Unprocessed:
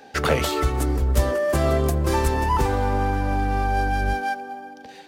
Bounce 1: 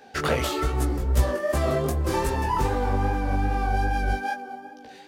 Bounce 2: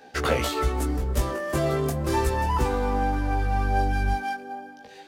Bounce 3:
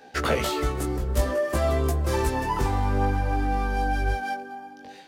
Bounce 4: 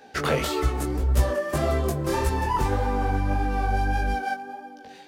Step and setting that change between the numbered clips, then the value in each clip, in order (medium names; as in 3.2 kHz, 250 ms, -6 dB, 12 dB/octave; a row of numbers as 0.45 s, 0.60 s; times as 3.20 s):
chorus, rate: 2.5 Hz, 0.36 Hz, 0.54 Hz, 1.7 Hz